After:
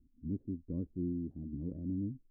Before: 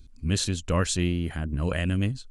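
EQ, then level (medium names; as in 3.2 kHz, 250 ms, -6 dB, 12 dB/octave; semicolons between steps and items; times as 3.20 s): four-pole ladder low-pass 330 Hz, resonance 55%; distance through air 390 m; bass shelf 110 Hz -9 dB; -1.5 dB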